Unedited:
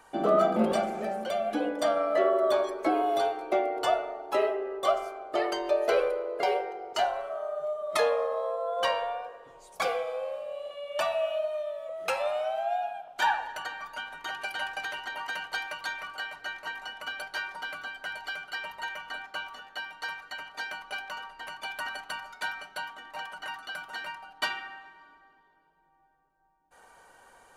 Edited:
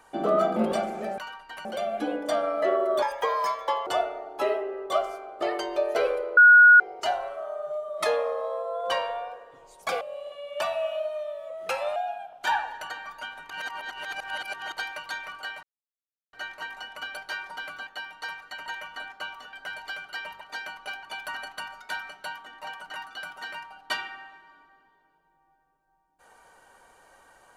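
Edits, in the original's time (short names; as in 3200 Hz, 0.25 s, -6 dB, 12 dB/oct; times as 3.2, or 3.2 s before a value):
2.55–3.8 speed 147%
6.3–6.73 bleep 1450 Hz -9.5 dBFS
9.94–10.4 cut
12.35–12.71 cut
14.25–15.47 reverse
16.38 insert silence 0.70 s
17.92–18.8 swap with 19.67–20.46
21.08–21.55 move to 1.18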